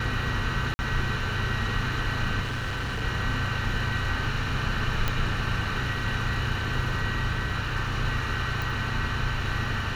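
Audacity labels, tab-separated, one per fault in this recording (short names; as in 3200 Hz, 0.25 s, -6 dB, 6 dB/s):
0.740000	0.790000	gap 50 ms
2.420000	3.030000	clipped -26.5 dBFS
5.080000	5.080000	pop -11 dBFS
8.620000	8.620000	pop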